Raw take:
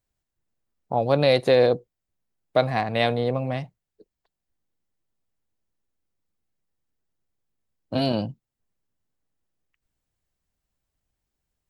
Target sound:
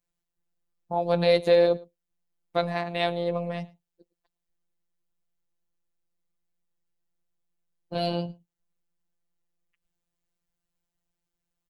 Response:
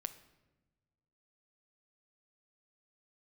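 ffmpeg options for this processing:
-af "afftfilt=real='hypot(re,im)*cos(PI*b)':imag='0':win_size=1024:overlap=0.75,aecho=1:1:110:0.0668"

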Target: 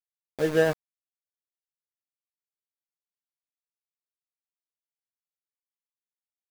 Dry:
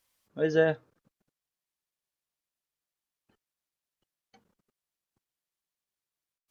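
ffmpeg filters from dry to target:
ffmpeg -i in.wav -af "adynamicsmooth=sensitivity=5.5:basefreq=840,aeval=exprs='val(0)*gte(abs(val(0)),0.0237)':channel_layout=same,volume=2dB" out.wav

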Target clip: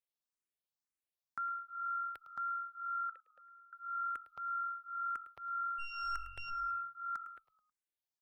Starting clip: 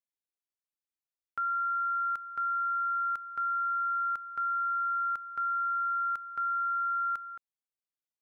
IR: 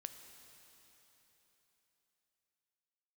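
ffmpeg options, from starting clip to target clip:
-filter_complex "[0:a]asettb=1/sr,asplit=3[link_01][link_02][link_03];[link_01]atrim=end=3.094[link_04];[link_02]atrim=start=3.09:end=3.73,asetpts=PTS-STARTPTS,afade=type=in:duration=0.004:curve=qsin,afade=type=out:start_time=0.636:duration=0.004:curve=qsin,asplit=3[link_05][link_06][link_07];[link_05]bandpass=frequency=530:width_type=q:width=8,volume=0dB[link_08];[link_06]bandpass=frequency=1840:width_type=q:width=8,volume=-6dB[link_09];[link_07]bandpass=frequency=2480:width_type=q:width=8,volume=-9dB[link_10];[link_08][link_09][link_10]amix=inputs=3:normalize=0[link_11];[link_03]atrim=start=3.726[link_12];[link_04][link_11]acrossfade=duration=0.004:curve1=hsin:curve2=qsin[link_13];[link_13][link_12]acrossfade=duration=0.004:curve1=qsin:curve2=hsin,bandreject=frequency=1400:width=18,asplit=3[link_14][link_15][link_16];[link_14]afade=type=out:start_time=5.78:duration=0.02[link_17];[link_15]aeval=exprs='0.0335*(cos(1*acos(clip(val(0)/0.0335,-1,1)))-cos(1*PI/2))+0.0075*(cos(6*acos(clip(val(0)/0.0335,-1,1)))-cos(6*PI/2))':channel_layout=same,afade=type=in:start_time=5.78:duration=0.02,afade=type=out:start_time=6.49:duration=0.02[link_18];[link_16]afade=type=in:start_time=6.49:duration=0.02[link_19];[link_17][link_18][link_19]amix=inputs=3:normalize=0,asplit=2[link_20][link_21];[link_21]asplit=3[link_22][link_23][link_24];[link_22]adelay=106,afreqshift=-45,volume=-14dB[link_25];[link_23]adelay=212,afreqshift=-90,volume=-22.9dB[link_26];[link_24]adelay=318,afreqshift=-135,volume=-31.7dB[link_27];[link_25][link_26][link_27]amix=inputs=3:normalize=0[link_28];[link_20][link_28]amix=inputs=2:normalize=0,asplit=2[link_29][link_30];[link_30]afreqshift=1.9[link_31];[link_29][link_31]amix=inputs=2:normalize=1"

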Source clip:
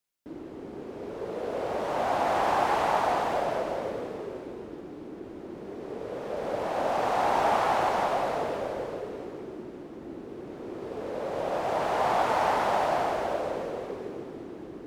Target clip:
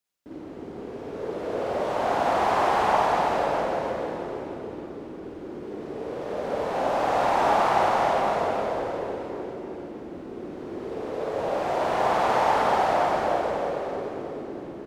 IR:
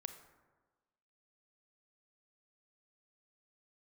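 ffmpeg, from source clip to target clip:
-filter_complex "[0:a]asplit=2[link_01][link_02];[link_02]adelay=310,lowpass=frequency=4100:poles=1,volume=-8dB,asplit=2[link_03][link_04];[link_04]adelay=310,lowpass=frequency=4100:poles=1,volume=0.54,asplit=2[link_05][link_06];[link_06]adelay=310,lowpass=frequency=4100:poles=1,volume=0.54,asplit=2[link_07][link_08];[link_08]adelay=310,lowpass=frequency=4100:poles=1,volume=0.54,asplit=2[link_09][link_10];[link_10]adelay=310,lowpass=frequency=4100:poles=1,volume=0.54,asplit=2[link_11][link_12];[link_12]adelay=310,lowpass=frequency=4100:poles=1,volume=0.54[link_13];[link_01][link_03][link_05][link_07][link_09][link_11][link_13]amix=inputs=7:normalize=0,asplit=2[link_14][link_15];[1:a]atrim=start_sample=2205,lowpass=8200,adelay=53[link_16];[link_15][link_16]afir=irnorm=-1:irlink=0,volume=4.5dB[link_17];[link_14][link_17]amix=inputs=2:normalize=0,volume=-1dB"

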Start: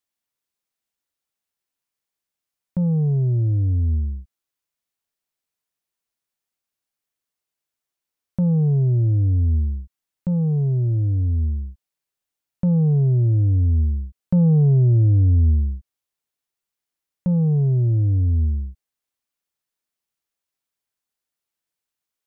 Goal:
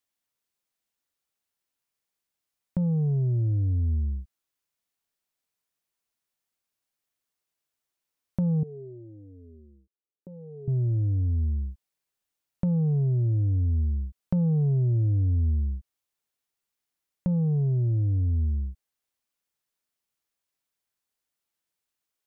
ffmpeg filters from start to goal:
ffmpeg -i in.wav -filter_complex "[0:a]acompressor=threshold=-25dB:ratio=3,asettb=1/sr,asplit=3[link_01][link_02][link_03];[link_01]atrim=end=8.634[link_04];[link_02]atrim=start=8.63:end=10.68,asetpts=PTS-STARTPTS,afade=type=in:duration=0.004:curve=qsin,afade=type=out:start_time=2.046:duration=0.004:curve=qsin,bandpass=frequency=410:width_type=q:width=4.7:csg=0[link_05];[link_03]atrim=start=10.676[link_06];[link_04][link_05]acrossfade=duration=0.004:curve1=hsin:curve2=qsin[link_07];[link_07][link_06]acrossfade=duration=0.004:curve1=qsin:curve2=hsin" out.wav

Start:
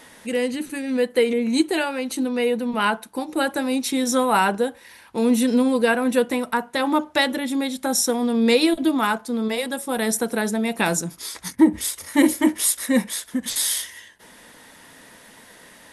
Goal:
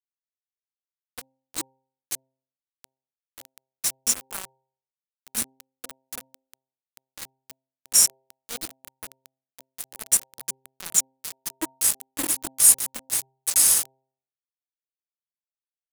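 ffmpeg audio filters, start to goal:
ffmpeg -i in.wav -filter_complex "[0:a]agate=range=-33dB:threshold=-33dB:ratio=3:detection=peak,aecho=1:1:1148:0.0841,aexciter=amount=14.7:drive=2.5:freq=5000,asplit=2[link_01][link_02];[link_02]adynamicsmooth=sensitivity=5.5:basefreq=1000,volume=-1dB[link_03];[link_01][link_03]amix=inputs=2:normalize=0,aeval=exprs='val(0)*gte(abs(val(0)),0.794)':channel_layout=same,bandreject=frequency=132.1:width_type=h:width=4,bandreject=frequency=264.2:width_type=h:width=4,bandreject=frequency=396.3:width_type=h:width=4,bandreject=frequency=528.4:width_type=h:width=4,bandreject=frequency=660.5:width_type=h:width=4,bandreject=frequency=792.6:width_type=h:width=4,bandreject=frequency=924.7:width_type=h:width=4,volume=-18dB" out.wav

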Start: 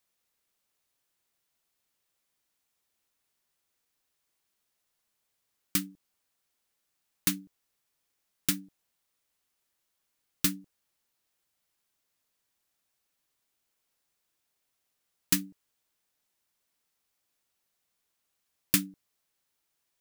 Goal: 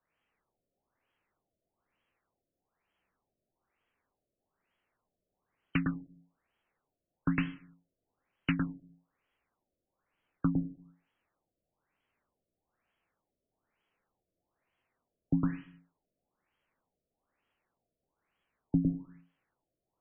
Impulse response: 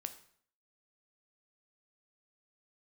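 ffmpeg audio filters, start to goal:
-filter_complex "[0:a]afreqshift=-19,asplit=2[link_01][link_02];[1:a]atrim=start_sample=2205,afade=type=out:start_time=0.4:duration=0.01,atrim=end_sample=18081,adelay=108[link_03];[link_02][link_03]afir=irnorm=-1:irlink=0,volume=1.5dB[link_04];[link_01][link_04]amix=inputs=2:normalize=0,afftfilt=real='re*lt(b*sr/1024,680*pow(3400/680,0.5+0.5*sin(2*PI*1.1*pts/sr)))':imag='im*lt(b*sr/1024,680*pow(3400/680,0.5+0.5*sin(2*PI*1.1*pts/sr)))':win_size=1024:overlap=0.75,volume=3.5dB"

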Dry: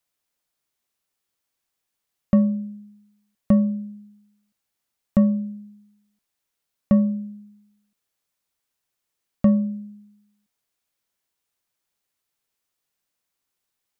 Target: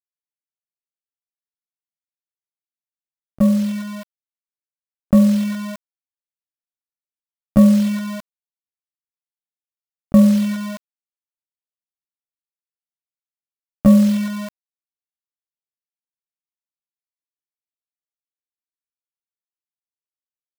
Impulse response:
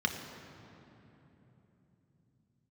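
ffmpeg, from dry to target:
-af "equalizer=frequency=69:width=0.75:gain=-2.5,acrusher=bits=5:mix=0:aa=0.000001,dynaudnorm=framelen=810:gausssize=7:maxgain=15.5dB,atempo=0.68,volume=-1dB"

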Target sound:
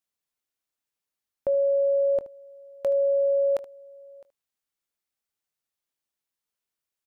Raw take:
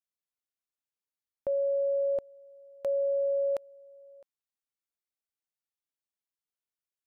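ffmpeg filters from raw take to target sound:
ffmpeg -i in.wav -af "aecho=1:1:22|75:0.15|0.141,volume=5.5dB" out.wav

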